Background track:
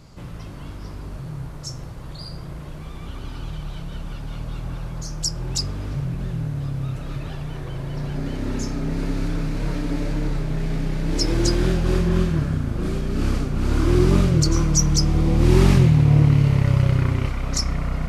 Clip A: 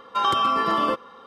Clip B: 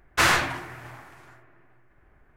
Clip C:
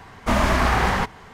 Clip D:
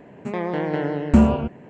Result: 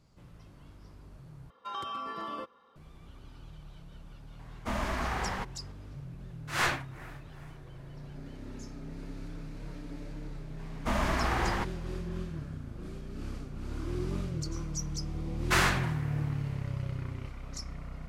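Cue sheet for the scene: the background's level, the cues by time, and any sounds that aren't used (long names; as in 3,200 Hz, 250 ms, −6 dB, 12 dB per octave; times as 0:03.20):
background track −17.5 dB
0:01.50: overwrite with A −16.5 dB + parametric band 83 Hz +4.5 dB
0:04.39: mix in C −13.5 dB
0:06.30: mix in B −4.5 dB + amplitude tremolo 2.6 Hz, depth 91%
0:10.59: mix in C −10.5 dB
0:15.33: mix in B −6.5 dB
not used: D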